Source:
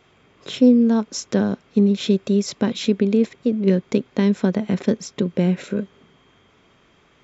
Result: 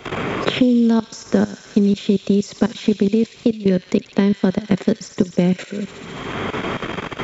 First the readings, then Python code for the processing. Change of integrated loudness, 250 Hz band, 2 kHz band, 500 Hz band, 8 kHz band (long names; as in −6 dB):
+0.5 dB, +1.0 dB, +7.5 dB, +1.5 dB, can't be measured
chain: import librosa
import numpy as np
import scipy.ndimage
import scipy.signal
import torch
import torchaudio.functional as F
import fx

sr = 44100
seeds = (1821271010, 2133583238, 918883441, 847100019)

y = fx.level_steps(x, sr, step_db=19)
y = fx.echo_wet_highpass(y, sr, ms=70, feedback_pct=73, hz=2500.0, wet_db=-8)
y = fx.band_squash(y, sr, depth_pct=100)
y = y * librosa.db_to_amplitude(5.0)